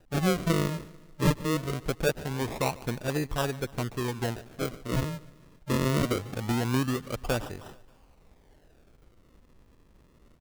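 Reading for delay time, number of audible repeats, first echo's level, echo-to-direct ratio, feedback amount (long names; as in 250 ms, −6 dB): 146 ms, 3, −20.5 dB, −19.0 dB, 51%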